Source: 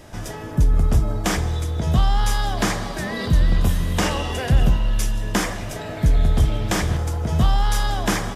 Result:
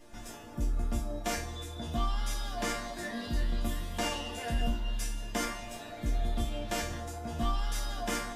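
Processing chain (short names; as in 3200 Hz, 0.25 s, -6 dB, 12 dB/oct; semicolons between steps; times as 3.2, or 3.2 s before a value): resonator bank A#3 major, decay 0.35 s; gain +8 dB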